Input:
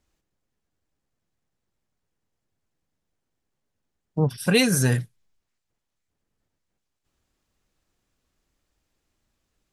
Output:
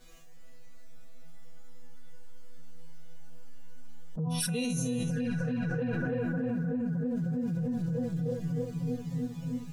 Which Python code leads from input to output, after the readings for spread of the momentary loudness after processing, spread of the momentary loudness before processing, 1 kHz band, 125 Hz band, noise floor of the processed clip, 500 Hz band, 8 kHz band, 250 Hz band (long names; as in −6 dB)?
4 LU, 9 LU, −5.0 dB, −3.0 dB, −41 dBFS, −4.5 dB, −7.5 dB, −0.5 dB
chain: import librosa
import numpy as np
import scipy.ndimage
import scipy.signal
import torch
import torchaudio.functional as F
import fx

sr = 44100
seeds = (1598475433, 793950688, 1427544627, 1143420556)

y = fx.resonator_bank(x, sr, root=52, chord='fifth', decay_s=0.32)
y = fx.echo_filtered(y, sr, ms=309, feedback_pct=80, hz=2100.0, wet_db=-11.0)
y = fx.hpss(y, sr, part='percussive', gain_db=-16)
y = fx.env_flanger(y, sr, rest_ms=7.9, full_db=-37.5)
y = fx.env_flatten(y, sr, amount_pct=100)